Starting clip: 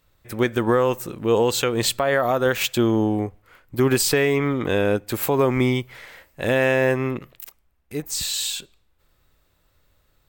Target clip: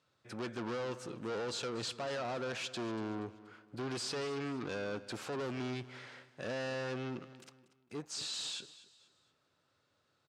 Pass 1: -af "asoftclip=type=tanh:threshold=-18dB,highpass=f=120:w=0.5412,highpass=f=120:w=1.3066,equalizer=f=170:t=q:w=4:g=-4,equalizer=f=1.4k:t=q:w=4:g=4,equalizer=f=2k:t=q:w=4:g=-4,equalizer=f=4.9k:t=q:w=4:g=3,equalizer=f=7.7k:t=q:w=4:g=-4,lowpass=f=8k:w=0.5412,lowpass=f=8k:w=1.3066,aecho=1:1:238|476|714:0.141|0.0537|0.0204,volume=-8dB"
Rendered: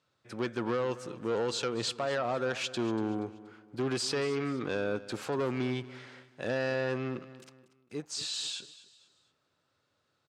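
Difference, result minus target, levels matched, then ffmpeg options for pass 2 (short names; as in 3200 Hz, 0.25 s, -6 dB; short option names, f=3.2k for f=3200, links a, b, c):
soft clip: distortion -7 dB
-af "asoftclip=type=tanh:threshold=-28dB,highpass=f=120:w=0.5412,highpass=f=120:w=1.3066,equalizer=f=170:t=q:w=4:g=-4,equalizer=f=1.4k:t=q:w=4:g=4,equalizer=f=2k:t=q:w=4:g=-4,equalizer=f=4.9k:t=q:w=4:g=3,equalizer=f=7.7k:t=q:w=4:g=-4,lowpass=f=8k:w=0.5412,lowpass=f=8k:w=1.3066,aecho=1:1:238|476|714:0.141|0.0537|0.0204,volume=-8dB"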